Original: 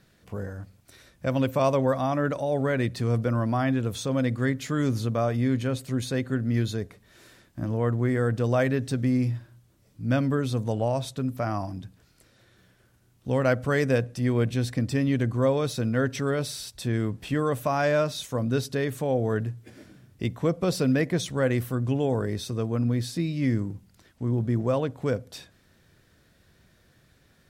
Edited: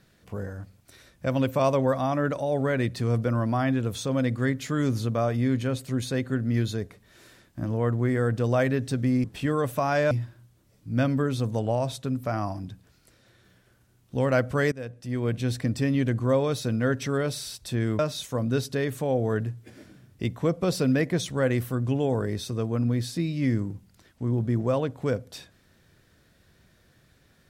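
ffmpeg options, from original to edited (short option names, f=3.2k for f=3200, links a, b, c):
-filter_complex "[0:a]asplit=5[a][b][c][d][e];[a]atrim=end=9.242[f];[b]atrim=start=17.118:end=17.992[g];[c]atrim=start=9.238:end=13.85,asetpts=PTS-STARTPTS,afade=t=out:st=4.608:d=0.004:c=hsin:silence=0.105925[h];[d]atrim=start=13.85:end=17.122,asetpts=PTS-STARTPTS,afade=t=in:d=0.82:silence=0.105925[i];[e]atrim=start=17.988[j];[f][g]acrossfade=d=0.004:c1=hsin:c2=hsin[k];[h][i]concat=n=2:v=0:a=1[l];[k][l]acrossfade=d=0.004:c1=hsin:c2=hsin[m];[m][j]acrossfade=d=0.004:c1=hsin:c2=hsin"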